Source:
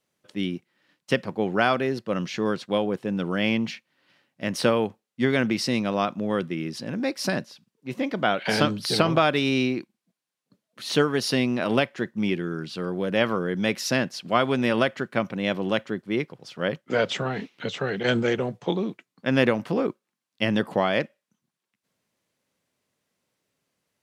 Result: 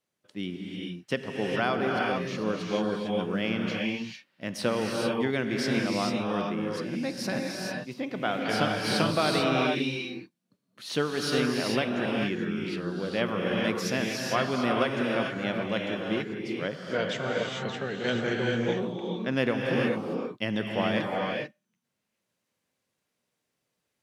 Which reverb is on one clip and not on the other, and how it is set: gated-style reverb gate 470 ms rising, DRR -1 dB; trim -6.5 dB

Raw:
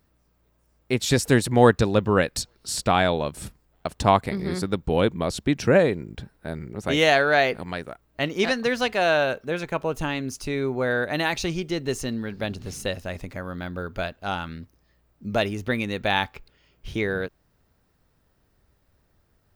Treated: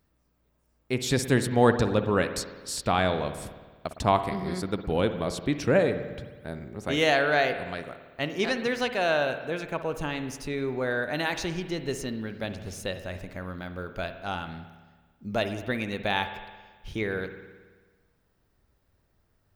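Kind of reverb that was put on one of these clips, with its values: spring tank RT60 1.4 s, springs 54 ms, chirp 45 ms, DRR 9 dB; trim -4.5 dB

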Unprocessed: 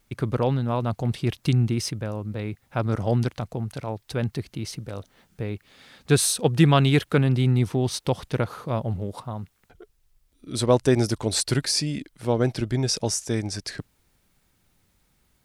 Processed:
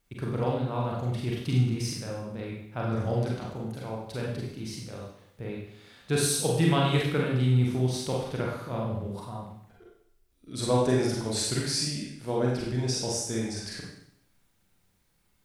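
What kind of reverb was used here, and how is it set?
Schroeder reverb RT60 0.73 s, combs from 32 ms, DRR -3.5 dB; trim -9 dB

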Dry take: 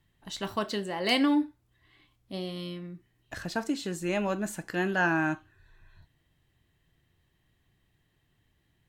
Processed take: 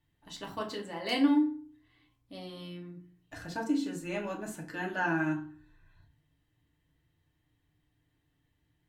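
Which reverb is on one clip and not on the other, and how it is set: FDN reverb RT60 0.44 s, low-frequency decay 1.4×, high-frequency decay 0.55×, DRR -0.5 dB; trim -8.5 dB

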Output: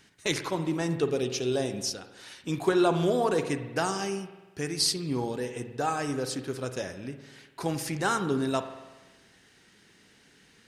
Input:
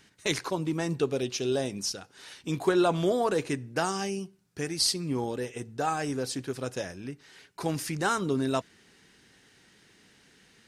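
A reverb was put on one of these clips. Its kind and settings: spring tank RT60 1.2 s, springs 48 ms, chirp 45 ms, DRR 9 dB

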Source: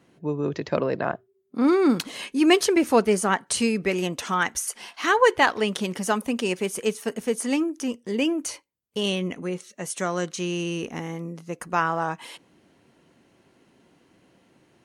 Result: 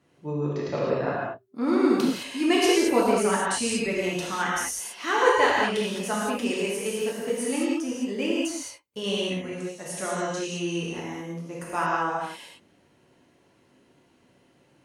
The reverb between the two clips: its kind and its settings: gated-style reverb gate 240 ms flat, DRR -6 dB; trim -8 dB

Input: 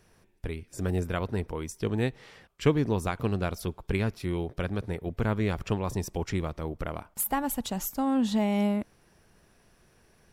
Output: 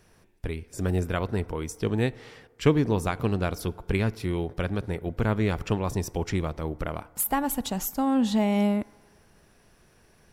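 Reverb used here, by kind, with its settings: FDN reverb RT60 1.8 s, low-frequency decay 0.7×, high-frequency decay 0.3×, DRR 19.5 dB; trim +2.5 dB

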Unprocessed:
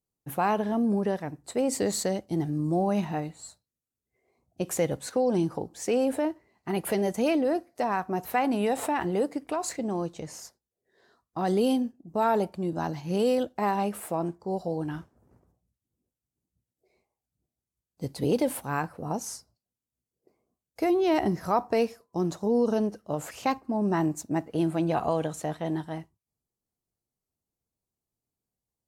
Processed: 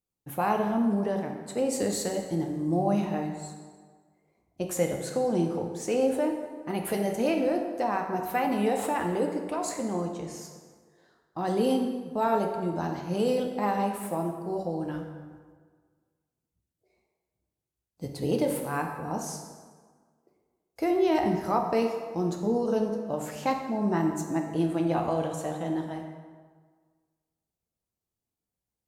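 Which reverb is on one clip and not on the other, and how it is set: plate-style reverb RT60 1.6 s, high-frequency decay 0.65×, DRR 2.5 dB; trim -2.5 dB

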